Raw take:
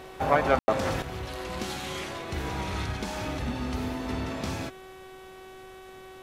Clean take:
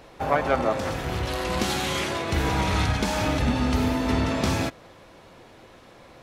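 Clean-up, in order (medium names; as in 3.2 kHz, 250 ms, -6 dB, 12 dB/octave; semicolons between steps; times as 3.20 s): de-hum 376.9 Hz, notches 10; room tone fill 0.59–0.68 s; noise reduction 6 dB, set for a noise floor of -46 dBFS; gain correction +8.5 dB, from 1.02 s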